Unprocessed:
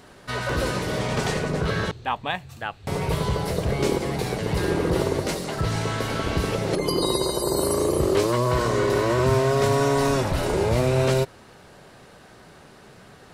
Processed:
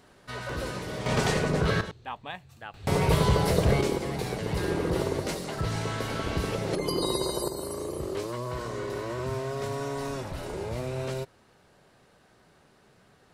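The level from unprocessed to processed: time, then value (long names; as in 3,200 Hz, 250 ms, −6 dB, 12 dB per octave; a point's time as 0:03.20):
−8.5 dB
from 0:01.06 −0.5 dB
from 0:01.81 −11 dB
from 0:02.74 +2 dB
from 0:03.81 −5 dB
from 0:07.48 −12 dB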